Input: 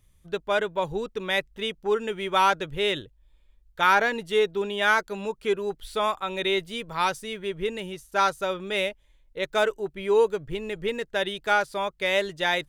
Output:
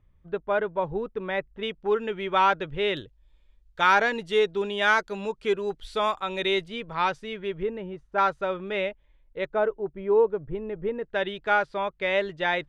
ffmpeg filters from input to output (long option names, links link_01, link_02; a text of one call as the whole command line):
ffmpeg -i in.wav -af "asetnsamples=nb_out_samples=441:pad=0,asendcmd='1.63 lowpass f 3000;2.97 lowpass f 6400;6.68 lowpass f 3100;7.63 lowpass f 1300;8.18 lowpass f 2300;9.47 lowpass f 1100;11.04 lowpass f 2700',lowpass=1600" out.wav